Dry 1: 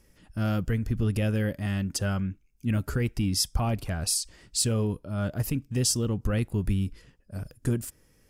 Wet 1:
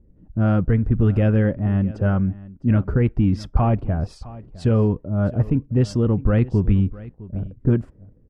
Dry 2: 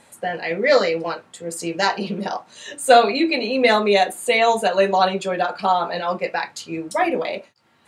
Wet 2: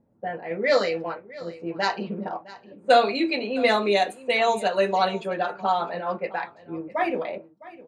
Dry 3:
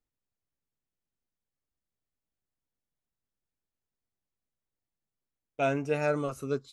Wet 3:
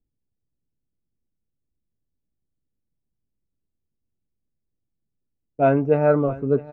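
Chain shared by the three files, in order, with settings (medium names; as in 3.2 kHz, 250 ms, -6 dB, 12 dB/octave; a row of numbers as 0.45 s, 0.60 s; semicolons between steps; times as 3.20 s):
level-controlled noise filter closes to 310 Hz, open at -13.5 dBFS; delay 659 ms -19 dB; peak normalisation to -6 dBFS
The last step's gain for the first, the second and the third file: +9.0 dB, -5.0 dB, +11.5 dB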